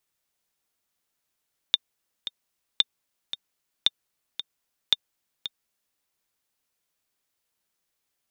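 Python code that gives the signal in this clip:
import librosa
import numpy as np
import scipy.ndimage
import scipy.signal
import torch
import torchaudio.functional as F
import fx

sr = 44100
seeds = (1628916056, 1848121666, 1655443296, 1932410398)

y = fx.click_track(sr, bpm=113, beats=2, bars=4, hz=3610.0, accent_db=12.5, level_db=-5.0)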